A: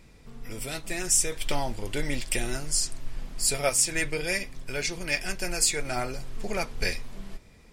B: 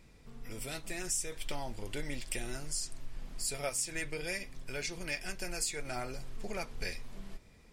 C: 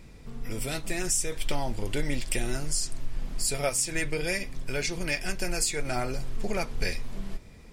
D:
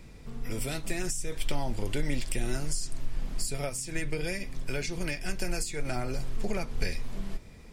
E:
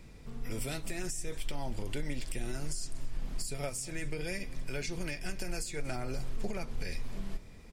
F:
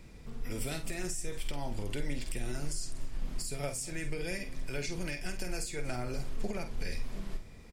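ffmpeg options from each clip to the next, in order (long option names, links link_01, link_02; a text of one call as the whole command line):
ffmpeg -i in.wav -af "acompressor=threshold=-30dB:ratio=2,volume=-5.5dB" out.wav
ffmpeg -i in.wav -af "lowshelf=frequency=450:gain=4,volume=7dB" out.wav
ffmpeg -i in.wav -filter_complex "[0:a]acrossover=split=310[link_01][link_02];[link_02]acompressor=threshold=-33dB:ratio=6[link_03];[link_01][link_03]amix=inputs=2:normalize=0" out.wav
ffmpeg -i in.wav -af "alimiter=limit=-22dB:level=0:latency=1:release=112,aecho=1:1:236:0.0891,volume=-3dB" out.wav
ffmpeg -i in.wav -filter_complex "[0:a]asplit=2[link_01][link_02];[link_02]adelay=49,volume=-9dB[link_03];[link_01][link_03]amix=inputs=2:normalize=0" out.wav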